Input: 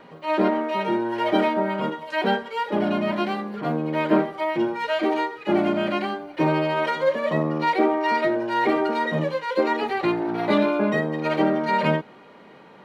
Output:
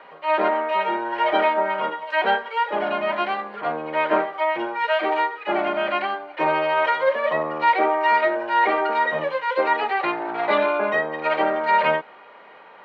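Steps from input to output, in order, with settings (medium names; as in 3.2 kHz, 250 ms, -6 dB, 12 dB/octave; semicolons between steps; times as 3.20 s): three-band isolator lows -21 dB, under 520 Hz, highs -21 dB, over 3.4 kHz; trim +5.5 dB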